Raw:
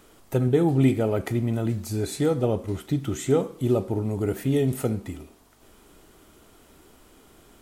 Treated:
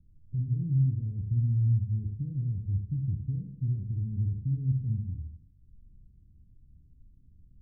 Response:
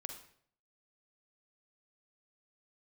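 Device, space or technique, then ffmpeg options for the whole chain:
club heard from the street: -filter_complex "[0:a]alimiter=limit=-19dB:level=0:latency=1:release=36,lowpass=frequency=140:width=0.5412,lowpass=frequency=140:width=1.3066[link_01];[1:a]atrim=start_sample=2205[link_02];[link_01][link_02]afir=irnorm=-1:irlink=0,volume=7dB"

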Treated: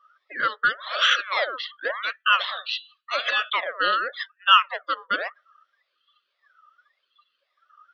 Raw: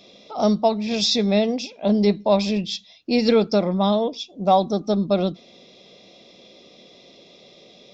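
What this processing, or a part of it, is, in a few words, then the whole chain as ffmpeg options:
voice changer toy: -filter_complex "[0:a]highpass=870,aeval=exprs='val(0)*sin(2*PI*1400*n/s+1400*0.55/0.9*sin(2*PI*0.9*n/s))':channel_layout=same,highpass=570,equalizer=frequency=570:width_type=q:width=4:gain=9,equalizer=frequency=860:width_type=q:width=4:gain=-9,equalizer=frequency=1200:width_type=q:width=4:gain=8,equalizer=frequency=2400:width_type=q:width=4:gain=-6,equalizer=frequency=3400:width_type=q:width=4:gain=6,lowpass=frequency=3800:width=0.5412,lowpass=frequency=3800:width=1.3066,asettb=1/sr,asplit=3[link_01][link_02][link_03];[link_01]atrim=end=2.394[link_04];[link_02]atrim=start=2.39:end=3.5,asetpts=PTS-STARTPTS,afade=type=in:duration=0.004:curve=qsin,afade=type=out:start_time=1.106:duration=0.004:curve=qsin,bandreject=frequency=124.3:width_type=h:width=4,bandreject=frequency=248.6:width_type=h:width=4,bandreject=frequency=372.9:width_type=h:width=4,bandreject=frequency=497.2:width_type=h:width=4,bandreject=frequency=621.5:width_type=h:width=4,bandreject=frequency=745.8:width_type=h:width=4,bandreject=frequency=870.1:width_type=h:width=4,bandreject=frequency=994.4:width_type=h:width=4,bandreject=frequency=1118.7:width_type=h:width=4,bandreject=frequency=1243:width_type=h:width=4,bandreject=frequency=1367.3:width_type=h:width=4,bandreject=frequency=1491.6:width_type=h:width=4,bandreject=frequency=1615.9:width_type=h:width=4,bandreject=frequency=1740.2:width_type=h:width=4,bandreject=frequency=1864.5:width_type=h:width=4,bandreject=frequency=1988.8:width_type=h:width=4,bandreject=frequency=2113.1:width_type=h:width=4,bandreject=frequency=2237.4:width_type=h:width=4,bandreject=frequency=2361.7:width_type=h:width=4,bandreject=frequency=2486:width_type=h:width=4,bandreject=frequency=2610.3:width_type=h:width=4,bandreject=frequency=2734.6:width_type=h:width=4,bandreject=frequency=2858.9:width_type=h:width=4,bandreject=frequency=2983.2:width_type=h:width=4,bandreject=frequency=3107.5:width_type=h:width=4,bandreject=frequency=3231.8:width_type=h:width=4,bandreject=frequency=3356.1:width_type=h:width=4,bandreject=frequency=3480.4:width_type=h:width=4,bandreject=frequency=3604.7:width_type=h:width=4,bandreject=frequency=3729:width_type=h:width=4,bandreject=frequency=3853.3:width_type=h:width=4,bandreject=frequency=3977.6:width_type=h:width=4,bandreject=frequency=4101.9:width_type=h:width=4,bandreject=frequency=4226.2:width_type=h:width=4,bandreject=frequency=4350.5:width_type=h:width=4,bandreject=frequency=4474.8:width_type=h:width=4,bandreject=frequency=4599.1:width_type=h:width=4,bandreject=frequency=4723.4:width_type=h:width=4,bandreject=frequency=4847.7:width_type=h:width=4[link_05];[link_03]atrim=start=3.496[link_06];[link_04][link_05]acrossfade=duration=0.004:curve1=hsin:curve2=qsin[link_07];[link_07][link_06]acrossfade=duration=0.004:curve1=qsin:curve2=hsin,afftdn=noise_reduction=26:noise_floor=-44,volume=7dB"

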